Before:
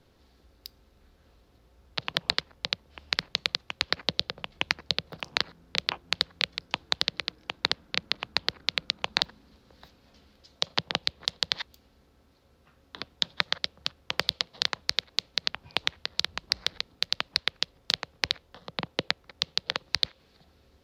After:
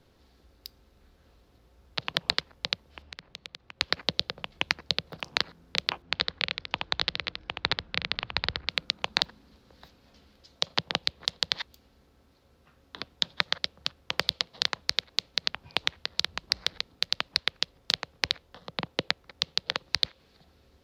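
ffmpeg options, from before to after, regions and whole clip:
-filter_complex "[0:a]asettb=1/sr,asplit=3[a][b][c];[a]atrim=end=3.024[d];[b]atrim=start=3.02:end=3.81,asetpts=PTS-STARTPTS,afade=t=in:d=0.004:c=qsin,afade=t=out:st=0.786:d=0.004:c=qsin,lowpass=f=2k:p=1,acompressor=threshold=-44dB:ratio=2.5:attack=3.2:release=140:knee=1:detection=peak[e];[c]atrim=start=3.806[f];[d][e]acrossfade=d=0.004:c1=hsin:c2=qsin[g];[g][f]acrossfade=d=0.004:c1=qsin:c2=hsin,asettb=1/sr,asplit=3[h][i][j];[h]atrim=end=6.024[k];[i]atrim=start=6.02:end=8.69,asetpts=PTS-STARTPTS,afade=t=in:d=0.004:c=qsin,afade=t=out:st=2.666:d=0.004:c=qsin,lowpass=3.9k,asubboost=boost=5.5:cutoff=120,aecho=1:1:73:0.631,atrim=end_sample=117747[l];[j]atrim=start=8.686[m];[k][l]acrossfade=d=0.004:c1=hsin:c2=qsin[n];[n][m]acrossfade=d=0.004:c1=qsin:c2=hsin"

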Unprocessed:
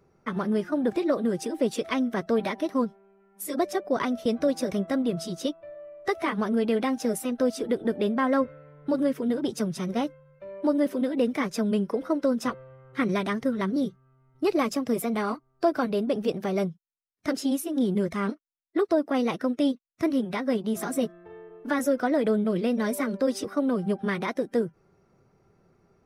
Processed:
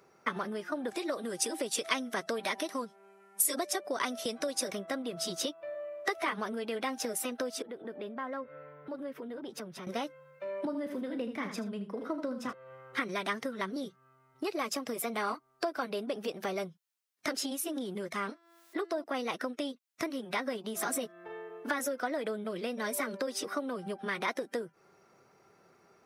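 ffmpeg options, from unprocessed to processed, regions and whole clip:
-filter_complex "[0:a]asettb=1/sr,asplit=3[a][b][c];[a]atrim=end=0.884[d];[b]atrim=start=0.88:end=4.68,asetpts=PTS-STARTPTS,afade=t=in:d=0.004:c=qsin,afade=t=out:st=3.796:d=0.004:c=qsin,lowpass=f=11k:w=0.5412,lowpass=f=11k:w=1.3066,aemphasis=mode=production:type=50kf[e];[c]atrim=start=4.676[f];[d][e]acrossfade=d=0.004:c1=hsin:c2=qsin[g];[g][f]acrossfade=d=0.004:c1=qsin:c2=hsin,asettb=1/sr,asplit=3[h][i][j];[h]atrim=end=7.624[k];[i]atrim=start=7.62:end=9.87,asetpts=PTS-STARTPTS,afade=t=in:d=0.004:c=qsin,afade=t=out:st=2.246:d=0.004:c=qsin,equalizer=f=7.9k:t=o:w=2.1:g=-14,acompressor=threshold=-44dB:ratio=2.5:attack=3.2:release=140:knee=1:detection=peak[l];[j]atrim=start=9.866[m];[k][l]acrossfade=d=0.004:c1=hsin:c2=qsin[n];[n][m]acrossfade=d=0.004:c1=qsin:c2=hsin,asettb=1/sr,asplit=3[o][p][q];[o]atrim=end=10.654[r];[p]atrim=start=10.65:end=12.53,asetpts=PTS-STARTPTS,afade=t=in:d=0.004:c=qsin,afade=t=out:st=1.876:d=0.004:c=qsin,bass=f=250:g=14,treble=f=4k:g=-7,asplit=2[s][t];[t]adelay=35,volume=-13dB[u];[s][u]amix=inputs=2:normalize=0,atrim=end_sample=82908,aecho=1:1:78:0.335,atrim=end_sample=82908[v];[q]atrim=start=12.526[w];[r][v]acrossfade=d=0.004:c1=hsin:c2=qsin[x];[x][w]acrossfade=d=0.004:c1=qsin:c2=hsin,asettb=1/sr,asplit=3[y][z][aa];[y]atrim=end=18.234[ab];[z]atrim=start=18.23:end=19.04,asetpts=PTS-STARTPTS,afade=t=in:d=0.004:c=qsin,afade=t=out:st=0.806:d=0.004:c=qsin,bandreject=f=337.3:t=h:w=4,bandreject=f=674.6:t=h:w=4,bandreject=f=1.0119k:t=h:w=4,bandreject=f=1.3492k:t=h:w=4,bandreject=f=1.6865k:t=h:w=4,bandreject=f=2.0238k:t=h:w=4,bandreject=f=2.3611k:t=h:w=4,bandreject=f=2.6984k:t=h:w=4,bandreject=f=3.0357k:t=h:w=4,bandreject=f=3.373k:t=h:w=4,bandreject=f=3.7103k:t=h:w=4,bandreject=f=4.0476k:t=h:w=4,bandreject=f=4.3849k:t=h:w=4,bandreject=f=4.7222k:t=h:w=4,bandreject=f=5.0595k:t=h:w=4,bandreject=f=5.3968k:t=h:w=4,bandreject=f=5.7341k:t=h:w=4,bandreject=f=6.0714k:t=h:w=4,bandreject=f=6.4087k:t=h:w=4,bandreject=f=6.746k:t=h:w=4,bandreject=f=7.0833k:t=h:w=4,bandreject=f=7.4206k:t=h:w=4,bandreject=f=7.7579k:t=h:w=4,acompressor=mode=upward:threshold=-44dB:ratio=2.5:attack=3.2:release=140:knee=2.83:detection=peak[ac];[aa]atrim=start=19.036[ad];[ab][ac]acrossfade=d=0.004:c1=hsin:c2=qsin[ae];[ae][ad]acrossfade=d=0.004:c1=qsin:c2=hsin,acompressor=threshold=-32dB:ratio=10,highpass=f=910:p=1,volume=8dB"

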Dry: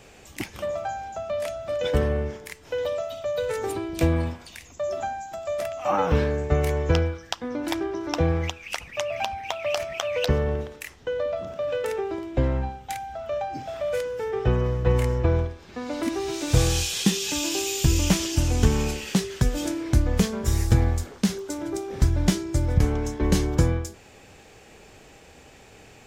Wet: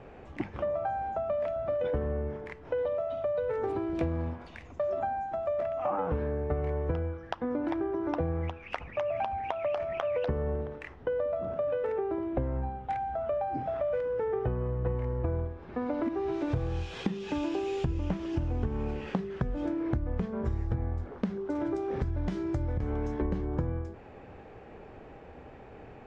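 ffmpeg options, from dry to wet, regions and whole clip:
-filter_complex "[0:a]asettb=1/sr,asplit=3[a][b][c];[a]atrim=end=3.634[d];[b]atrim=start=3.63:end=5,asetpts=PTS-STARTPTS,afade=t=in:d=0.004:c=qsin,afade=t=out:st=1.366:d=0.004:c=qsin,highshelf=f=4.1k:g=5.5,acrusher=bits=4:mode=log:mix=0:aa=0.000001[e];[c]atrim=start=4.996[f];[d][e]acrossfade=d=0.004:c1=hsin:c2=qsin[g];[g][f]acrossfade=d=0.004:c1=qsin:c2=hsin,asettb=1/sr,asplit=3[h][i][j];[h]atrim=end=21.554[k];[i]atrim=start=21.55:end=23.22,asetpts=PTS-STARTPTS,afade=t=in:d=0.004:c=qsin,afade=t=out:st=1.666:d=0.004:c=qsin,highshelf=f=2.6k:g=11,acompressor=threshold=-22dB:ratio=2:attack=3.2:release=140:knee=1:detection=peak[l];[j]atrim=start=23.216[m];[k][l]acrossfade=d=0.004:c1=hsin:c2=qsin[n];[n][m]acrossfade=d=0.004:c1=qsin:c2=hsin,lowpass=1.3k,bandreject=f=50:t=h:w=6,bandreject=f=100:t=h:w=6,bandreject=f=150:t=h:w=6,bandreject=f=200:t=h:w=6,acompressor=threshold=-31dB:ratio=6,volume=3dB"

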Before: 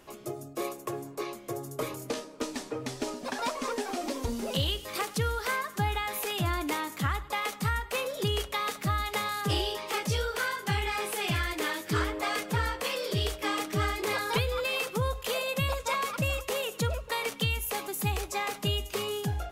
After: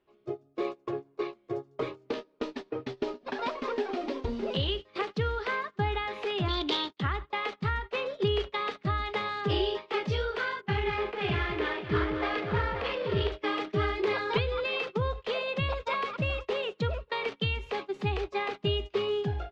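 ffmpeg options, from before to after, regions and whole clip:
-filter_complex "[0:a]asettb=1/sr,asplit=3[a][b][c];[a]atrim=end=6.484[d];[b]atrim=start=6.48:end=7,asetpts=PTS-STARTPTS,afade=t=in:d=0.004:c=qsin,afade=t=out:st=0.516:d=0.004:c=qsin,highshelf=f=2.7k:t=q:w=3:g=10,adynamicsmooth=sensitivity=7:basefreq=1.4k,agate=range=-33dB:threshold=-33dB:ratio=3:release=100:detection=peak[e];[c]atrim=start=6.996[f];[d][e]acrossfade=d=0.004:c1=hsin:c2=qsin[g];[g][f]acrossfade=d=0.004:c1=qsin:c2=hsin,asettb=1/sr,asplit=3[h][i][j];[h]atrim=end=10.614[k];[i]atrim=start=10.61:end=13.32,asetpts=PTS-STARTPTS,afade=t=in:d=0.004:c=qsin,afade=t=out:st=2.706:d=0.004:c=qsin,adynamicsmooth=sensitivity=6.5:basefreq=1.6k,aecho=1:1:42|199|531:0.266|0.266|0.335,atrim=end_sample=119511[l];[j]atrim=start=13.316[m];[k][l]acrossfade=d=0.004:c1=hsin:c2=qsin[n];[n][m]acrossfade=d=0.004:c1=qsin:c2=hsin,agate=range=-20dB:threshold=-35dB:ratio=16:detection=peak,lowpass=f=4k:w=0.5412,lowpass=f=4k:w=1.3066,equalizer=f=390:t=o:w=0.28:g=9,volume=-1dB"

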